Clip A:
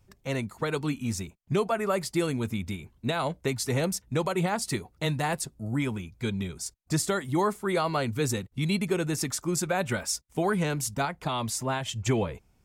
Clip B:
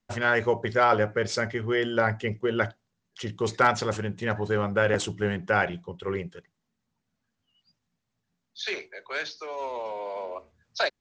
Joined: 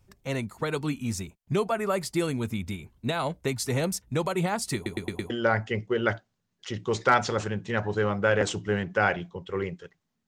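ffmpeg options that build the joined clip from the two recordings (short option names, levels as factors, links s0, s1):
-filter_complex "[0:a]apad=whole_dur=10.27,atrim=end=10.27,asplit=5[s0][s1][s2][s3][s4];[s0]atrim=end=4.862[s5];[s1]atrim=start=4.748:end=4.862[s6];[s2]atrim=start=4.748:end=4.862[s7];[s3]atrim=start=4.748:end=4.862[s8];[s4]atrim=start=4.748:end=4.862[s9];[1:a]atrim=start=1.828:end=6.8[s10];[s5][s6]acrossfade=d=0.004:c1=hsin:c2=hsin[s11];[s11][s7]acrossfade=d=0.004:c1=hsin:c2=hsin[s12];[s12][s8]acrossfade=d=0.004:c1=hsin:c2=hsin[s13];[s13][s9]acrossfade=d=0.004:c1=hsin:c2=hsin[s14];[s14][s10]acrossfade=d=0.004:c1=hsin:c2=hsin"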